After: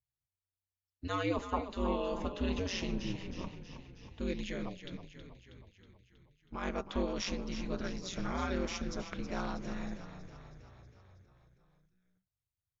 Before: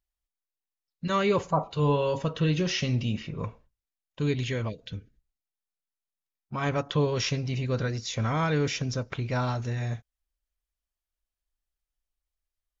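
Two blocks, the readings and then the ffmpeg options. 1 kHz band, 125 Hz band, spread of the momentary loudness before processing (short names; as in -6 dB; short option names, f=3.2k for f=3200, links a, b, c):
-8.0 dB, -15.5 dB, 12 LU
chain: -filter_complex "[0:a]aeval=exprs='val(0)*sin(2*PI*93*n/s)':c=same,asplit=8[a][b][c][d][e][f][g][h];[b]adelay=320,afreqshift=-30,volume=-10.5dB[i];[c]adelay=640,afreqshift=-60,volume=-14.8dB[j];[d]adelay=960,afreqshift=-90,volume=-19.1dB[k];[e]adelay=1280,afreqshift=-120,volume=-23.4dB[l];[f]adelay=1600,afreqshift=-150,volume=-27.7dB[m];[g]adelay=1920,afreqshift=-180,volume=-32dB[n];[h]adelay=2240,afreqshift=-210,volume=-36.3dB[o];[a][i][j][k][l][m][n][o]amix=inputs=8:normalize=0,volume=-6dB"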